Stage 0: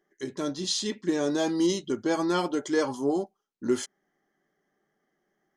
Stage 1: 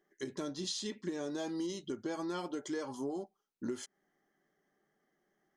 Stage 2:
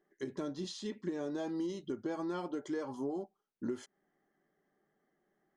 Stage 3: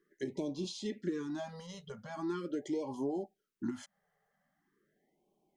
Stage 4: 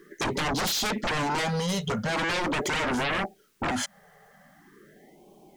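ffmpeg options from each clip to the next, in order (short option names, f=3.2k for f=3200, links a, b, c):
-af "acompressor=threshold=-33dB:ratio=6,volume=-2.5dB"
-af "highshelf=f=2.8k:g=-11.5,volume=1dB"
-filter_complex "[0:a]acrossover=split=500[a][b];[b]acompressor=threshold=-41dB:ratio=6[c];[a][c]amix=inputs=2:normalize=0,afftfilt=real='re*(1-between(b*sr/1024,280*pow(1600/280,0.5+0.5*sin(2*PI*0.42*pts/sr))/1.41,280*pow(1600/280,0.5+0.5*sin(2*PI*0.42*pts/sr))*1.41))':imag='im*(1-between(b*sr/1024,280*pow(1600/280,0.5+0.5*sin(2*PI*0.42*pts/sr))/1.41,280*pow(1600/280,0.5+0.5*sin(2*PI*0.42*pts/sr))*1.41))':win_size=1024:overlap=0.75,volume=2dB"
-af "aeval=exprs='0.0631*sin(PI/2*8.91*val(0)/0.0631)':c=same"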